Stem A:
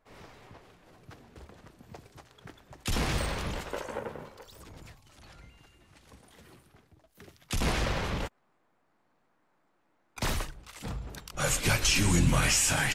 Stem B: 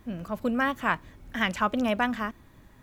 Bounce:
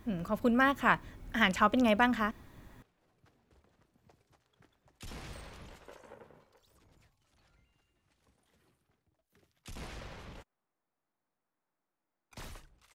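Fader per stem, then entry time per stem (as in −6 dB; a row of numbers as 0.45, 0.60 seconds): −16.5, −0.5 decibels; 2.15, 0.00 seconds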